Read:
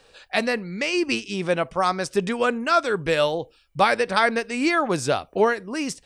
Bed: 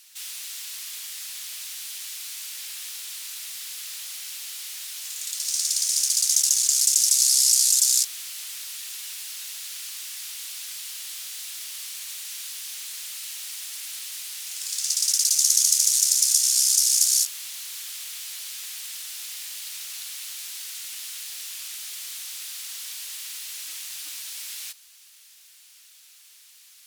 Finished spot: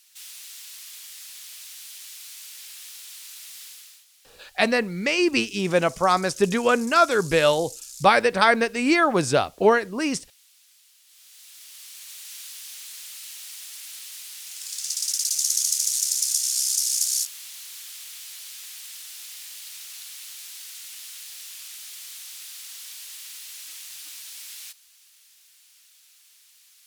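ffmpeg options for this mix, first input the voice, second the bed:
ffmpeg -i stem1.wav -i stem2.wav -filter_complex "[0:a]adelay=4250,volume=2dB[link_01];[1:a]volume=12dB,afade=type=out:start_time=3.63:duration=0.42:silence=0.158489,afade=type=in:start_time=11.05:duration=1.3:silence=0.133352[link_02];[link_01][link_02]amix=inputs=2:normalize=0" out.wav

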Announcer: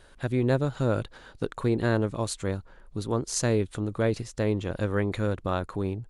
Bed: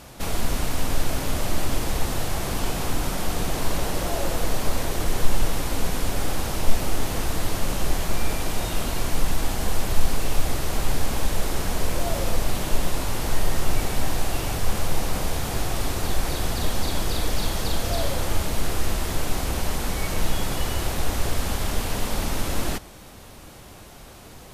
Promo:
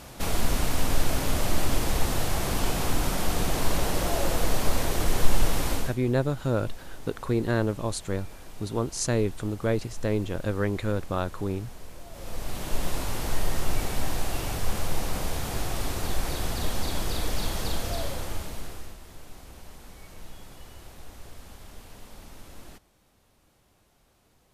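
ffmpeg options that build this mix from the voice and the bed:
ffmpeg -i stem1.wav -i stem2.wav -filter_complex "[0:a]adelay=5650,volume=-0.5dB[link_01];[1:a]volume=15dB,afade=type=out:start_time=5.71:duration=0.25:silence=0.112202,afade=type=in:start_time=12.11:duration=0.8:silence=0.16788,afade=type=out:start_time=17.68:duration=1.29:silence=0.149624[link_02];[link_01][link_02]amix=inputs=2:normalize=0" out.wav

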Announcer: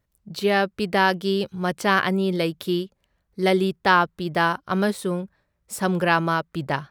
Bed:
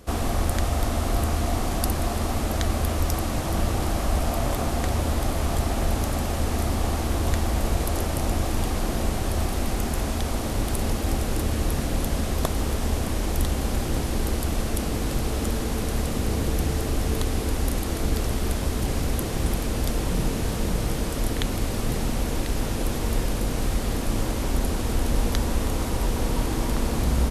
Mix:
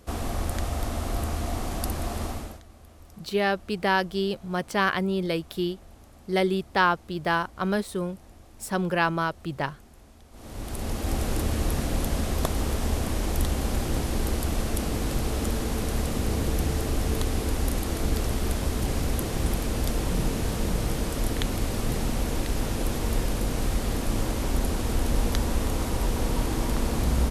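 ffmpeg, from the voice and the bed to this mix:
ffmpeg -i stem1.wav -i stem2.wav -filter_complex "[0:a]adelay=2900,volume=-4dB[link_01];[1:a]volume=19.5dB,afade=type=out:start_time=2.24:duration=0.37:silence=0.0891251,afade=type=in:start_time=10.31:duration=0.93:silence=0.0595662[link_02];[link_01][link_02]amix=inputs=2:normalize=0" out.wav

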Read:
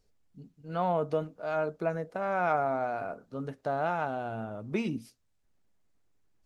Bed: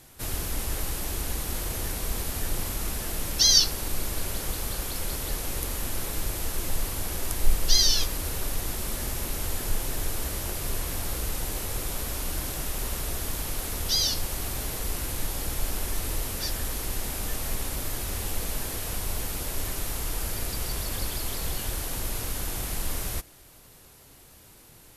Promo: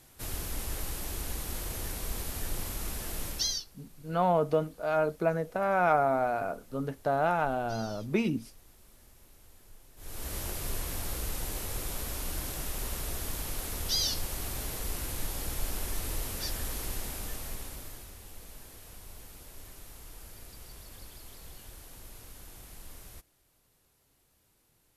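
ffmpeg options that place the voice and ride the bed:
ffmpeg -i stem1.wav -i stem2.wav -filter_complex "[0:a]adelay=3400,volume=3dB[link_01];[1:a]volume=17dB,afade=type=out:start_time=3.26:duration=0.38:silence=0.0841395,afade=type=in:start_time=9.96:duration=0.41:silence=0.0749894,afade=type=out:start_time=16.85:duration=1.3:silence=0.223872[link_02];[link_01][link_02]amix=inputs=2:normalize=0" out.wav

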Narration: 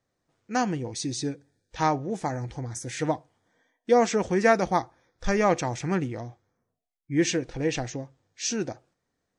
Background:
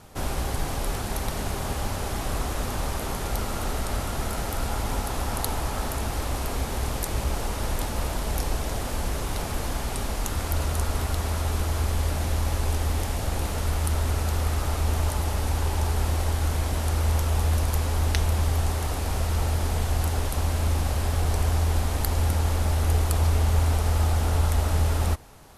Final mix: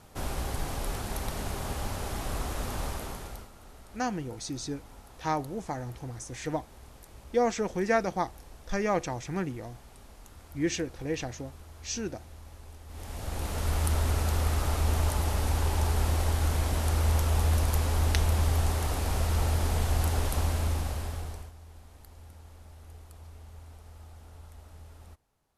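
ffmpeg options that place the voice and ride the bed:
ffmpeg -i stem1.wav -i stem2.wav -filter_complex "[0:a]adelay=3450,volume=-5.5dB[link_01];[1:a]volume=15.5dB,afade=type=out:start_time=2.85:duration=0.65:silence=0.133352,afade=type=in:start_time=12.87:duration=0.92:silence=0.0944061,afade=type=out:start_time=20.36:duration=1.16:silence=0.0595662[link_02];[link_01][link_02]amix=inputs=2:normalize=0" out.wav

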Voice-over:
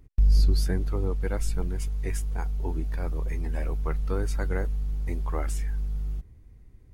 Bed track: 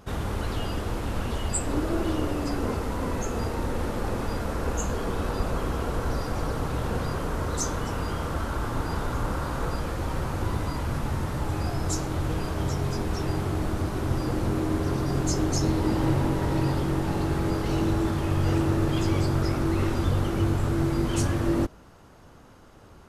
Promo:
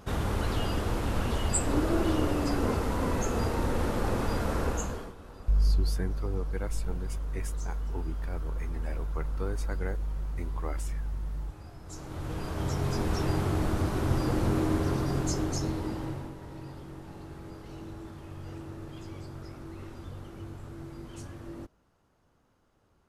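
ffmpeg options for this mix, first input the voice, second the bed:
ffmpeg -i stem1.wav -i stem2.wav -filter_complex "[0:a]adelay=5300,volume=-4.5dB[link_01];[1:a]volume=19dB,afade=type=out:start_time=4.59:duration=0.55:silence=0.105925,afade=type=in:start_time=11.85:duration=1.21:silence=0.112202,afade=type=out:start_time=14.62:duration=1.73:silence=0.133352[link_02];[link_01][link_02]amix=inputs=2:normalize=0" out.wav

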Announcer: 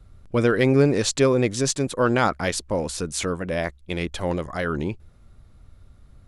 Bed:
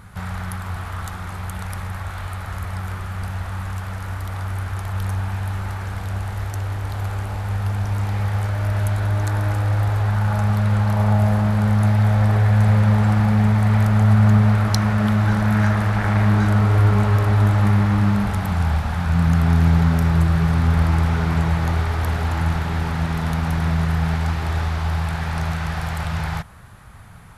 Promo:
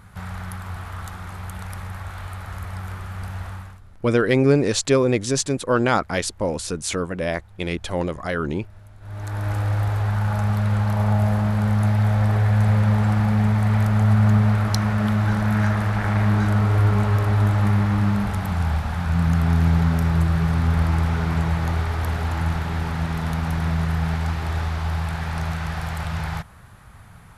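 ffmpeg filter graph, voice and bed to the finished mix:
ffmpeg -i stem1.wav -i stem2.wav -filter_complex "[0:a]adelay=3700,volume=1dB[link_01];[1:a]volume=20dB,afade=type=out:start_time=3.47:duration=0.34:silence=0.0749894,afade=type=in:start_time=9:duration=0.57:silence=0.0630957[link_02];[link_01][link_02]amix=inputs=2:normalize=0" out.wav

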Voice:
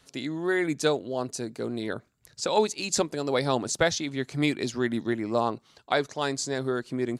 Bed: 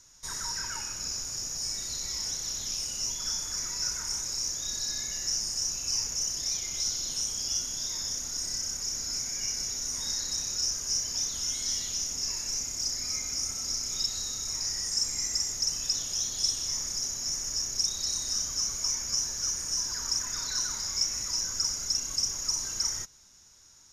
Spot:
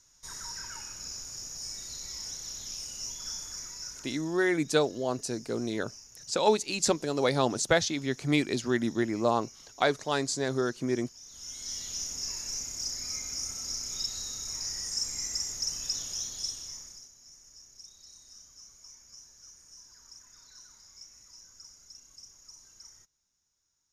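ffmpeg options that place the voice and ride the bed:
ffmpeg -i stem1.wav -i stem2.wav -filter_complex "[0:a]adelay=3900,volume=-0.5dB[link_01];[1:a]volume=10.5dB,afade=type=out:start_time=3.43:duration=0.95:silence=0.199526,afade=type=in:start_time=11.22:duration=0.79:silence=0.149624,afade=type=out:start_time=16.06:duration=1.04:silence=0.11885[link_02];[link_01][link_02]amix=inputs=2:normalize=0" out.wav

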